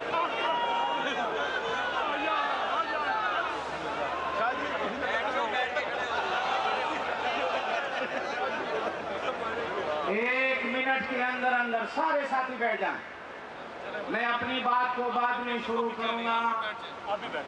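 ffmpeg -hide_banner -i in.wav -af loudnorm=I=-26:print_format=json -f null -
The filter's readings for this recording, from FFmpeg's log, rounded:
"input_i" : "-29.5",
"input_tp" : "-15.1",
"input_lra" : "1.6",
"input_thresh" : "-39.6",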